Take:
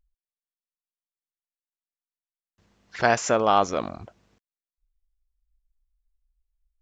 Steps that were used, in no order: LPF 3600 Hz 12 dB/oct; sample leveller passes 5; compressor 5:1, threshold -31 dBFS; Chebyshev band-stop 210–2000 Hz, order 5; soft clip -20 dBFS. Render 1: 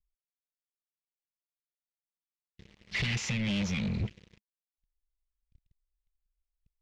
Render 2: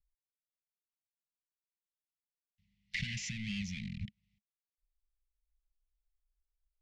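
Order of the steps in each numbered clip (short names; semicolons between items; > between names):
soft clip > compressor > Chebyshev band-stop > sample leveller > LPF; sample leveller > compressor > Chebyshev band-stop > soft clip > LPF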